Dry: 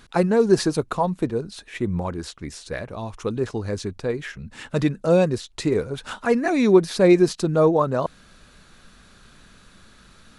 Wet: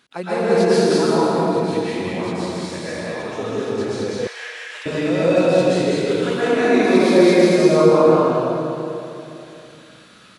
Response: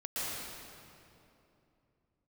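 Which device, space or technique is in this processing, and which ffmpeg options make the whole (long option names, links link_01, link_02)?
stadium PA: -filter_complex "[0:a]highpass=190,equalizer=frequency=2900:width_type=o:width=1.2:gain=5,aecho=1:1:166.2|204.1:0.355|0.794[link_01];[1:a]atrim=start_sample=2205[link_02];[link_01][link_02]afir=irnorm=-1:irlink=0,asettb=1/sr,asplit=3[link_03][link_04][link_05];[link_03]atrim=end=4.274[link_06];[link_04]atrim=start=4.27:end=4.86,asetpts=PTS-STARTPTS,afade=type=in:duration=0.004:curve=qsin,afade=type=out:start_time=0.586:duration=0.004:curve=qsin,highpass=frequency=840:width=0.5412,highpass=frequency=840:width=1.3066[link_07];[link_05]atrim=start=4.856[link_08];[link_06][link_07]acrossfade=duration=0.004:curve1=hsin:curve2=qsin[link_09];[link_09][link_08]acrossfade=duration=0.004:curve1=qsin:curve2=hsin,volume=-3dB"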